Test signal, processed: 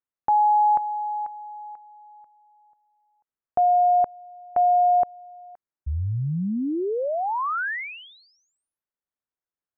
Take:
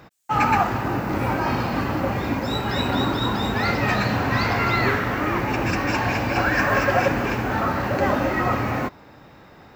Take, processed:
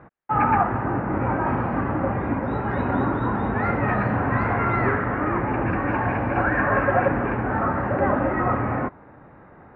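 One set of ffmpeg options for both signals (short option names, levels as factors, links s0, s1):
-af "lowpass=f=1800:w=0.5412,lowpass=f=1800:w=1.3066"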